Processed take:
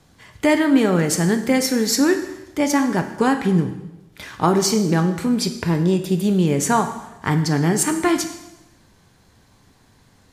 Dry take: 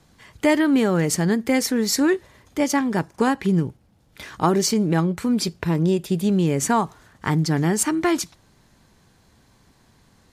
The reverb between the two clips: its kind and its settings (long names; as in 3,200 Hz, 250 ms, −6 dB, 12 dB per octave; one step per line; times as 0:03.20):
dense smooth reverb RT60 0.95 s, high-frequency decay 1×, DRR 6.5 dB
level +1.5 dB